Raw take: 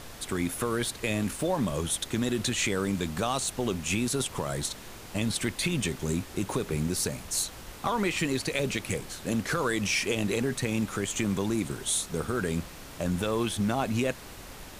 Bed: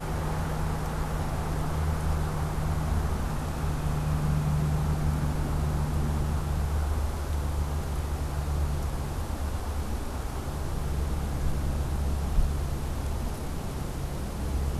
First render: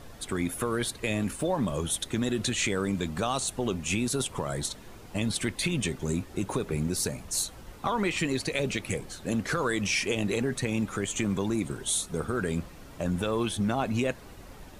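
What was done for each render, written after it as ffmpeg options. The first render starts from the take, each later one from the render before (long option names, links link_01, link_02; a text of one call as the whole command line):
ffmpeg -i in.wav -af "afftdn=noise_reduction=9:noise_floor=-45" out.wav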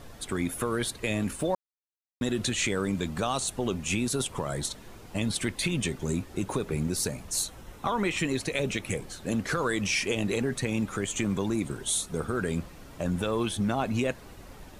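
ffmpeg -i in.wav -filter_complex "[0:a]asettb=1/sr,asplit=3[link_01][link_02][link_03];[link_01]atrim=end=7.504[link_04];[link_02]atrim=start=7.5:end=8.99,asetpts=PTS-STARTPTS,afade=type=in:duration=0.004:curve=qsin,afade=type=out:start_time=1.486:duration=0.004:curve=qsin,bandreject=frequency=4600:width=9.8[link_05];[link_03]atrim=start=8.986[link_06];[link_04][link_05]acrossfade=duration=0.004:curve1=hsin:curve2=qsin[link_07];[link_07][link_06]acrossfade=duration=0.004:curve1=qsin:curve2=hsin,asplit=3[link_08][link_09][link_10];[link_08]atrim=end=1.55,asetpts=PTS-STARTPTS,afade=type=out:start_time=1.546:duration=0.004:curve=hsin[link_11];[link_09]atrim=start=1.55:end=2.21,asetpts=PTS-STARTPTS,volume=0[link_12];[link_10]atrim=start=2.21,asetpts=PTS-STARTPTS,afade=type=in:duration=0.004:curve=hsin[link_13];[link_11][link_12][link_13]concat=n=3:v=0:a=1" out.wav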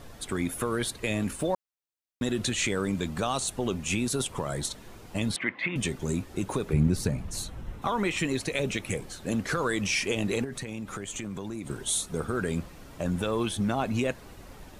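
ffmpeg -i in.wav -filter_complex "[0:a]asettb=1/sr,asplit=3[link_01][link_02][link_03];[link_01]atrim=end=5.364[link_04];[link_02]atrim=start=5.36:end=5.76,asetpts=PTS-STARTPTS,afade=type=in:duration=0.004:curve=qsin,afade=type=out:start_time=0.396:duration=0.004:curve=qsin,highpass=240,equalizer=frequency=410:width_type=q:width=4:gain=-7,equalizer=frequency=1100:width_type=q:width=4:gain=4,equalizer=frequency=2000:width_type=q:width=4:gain=10,lowpass=frequency=2700:width=0.5412,lowpass=frequency=2700:width=1.3066[link_05];[link_03]atrim=start=5.756[link_06];[link_04][link_05]acrossfade=duration=0.004:curve1=hsin:curve2=qsin[link_07];[link_07][link_06]acrossfade=duration=0.004:curve1=qsin:curve2=hsin,asettb=1/sr,asplit=3[link_08][link_09][link_10];[link_08]atrim=end=6.734[link_11];[link_09]atrim=start=6.73:end=7.82,asetpts=PTS-STARTPTS,afade=type=in:duration=0.004:curve=qsin,afade=type=out:start_time=1.086:duration=0.004:curve=qsin,bass=frequency=250:gain=9,treble=frequency=4000:gain=-8[link_12];[link_10]atrim=start=7.816[link_13];[link_11][link_12]acrossfade=duration=0.004:curve1=hsin:curve2=qsin[link_14];[link_14][link_13]acrossfade=duration=0.004:curve1=qsin:curve2=hsin,asettb=1/sr,asplit=3[link_15][link_16][link_17];[link_15]atrim=end=10.444[link_18];[link_16]atrim=start=10.44:end=11.67,asetpts=PTS-STARTPTS,afade=type=in:duration=0.004:curve=qsin,afade=type=out:start_time=1.226:duration=0.004:curve=qsin,acompressor=threshold=-32dB:ratio=5:attack=3.2:release=140:knee=1:detection=peak[link_19];[link_17]atrim=start=11.666[link_20];[link_18][link_19]acrossfade=duration=0.004:curve1=hsin:curve2=qsin[link_21];[link_21][link_20]acrossfade=duration=0.004:curve1=qsin:curve2=hsin" out.wav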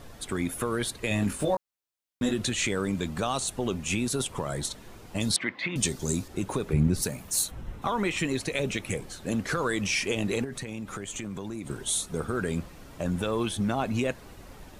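ffmpeg -i in.wav -filter_complex "[0:a]asettb=1/sr,asplit=3[link_01][link_02][link_03];[link_01]atrim=end=1.094[link_04];[link_02]atrim=start=1.09:end=2.34,asetpts=PTS-STARTPTS,afade=type=in:duration=0.004:curve=qsin,afade=type=out:start_time=1.246:duration=0.004:curve=qsin,asplit=2[link_05][link_06];[link_06]adelay=20,volume=-3dB[link_07];[link_05][link_07]amix=inputs=2:normalize=0,atrim=end_sample=55125[link_08];[link_03]atrim=start=2.336[link_09];[link_04][link_08]acrossfade=duration=0.004:curve1=hsin:curve2=qsin[link_10];[link_10][link_09]acrossfade=duration=0.004:curve1=qsin:curve2=hsin,asettb=1/sr,asplit=3[link_11][link_12][link_13];[link_11]atrim=end=5.204[link_14];[link_12]atrim=start=5.2:end=6.28,asetpts=PTS-STARTPTS,afade=type=in:duration=0.004:curve=qsin,afade=type=out:start_time=1.076:duration=0.004:curve=qsin,highshelf=frequency=3500:width_type=q:width=1.5:gain=7.5[link_15];[link_13]atrim=start=6.276[link_16];[link_14][link_15]acrossfade=duration=0.004:curve1=hsin:curve2=qsin[link_17];[link_17][link_16]acrossfade=duration=0.004:curve1=qsin:curve2=hsin,asplit=3[link_18][link_19][link_20];[link_18]afade=type=out:start_time=7.01:duration=0.02[link_21];[link_19]aemphasis=mode=production:type=bsi,afade=type=in:start_time=7.01:duration=0.02,afade=type=out:start_time=7.5:duration=0.02[link_22];[link_20]afade=type=in:start_time=7.5:duration=0.02[link_23];[link_21][link_22][link_23]amix=inputs=3:normalize=0" out.wav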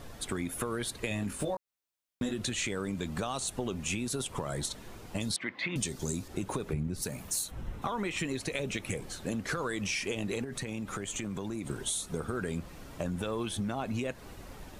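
ffmpeg -i in.wav -af "acompressor=threshold=-30dB:ratio=6" out.wav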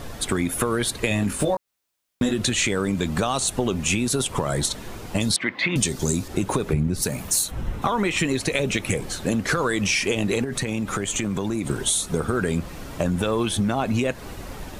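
ffmpeg -i in.wav -af "volume=11dB" out.wav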